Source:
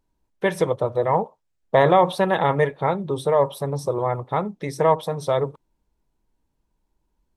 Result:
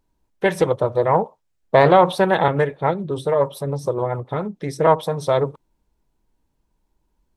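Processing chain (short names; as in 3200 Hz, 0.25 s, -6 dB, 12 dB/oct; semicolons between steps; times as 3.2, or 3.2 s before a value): 2.48–4.87 rotary speaker horn 7 Hz; Doppler distortion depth 0.21 ms; gain +3 dB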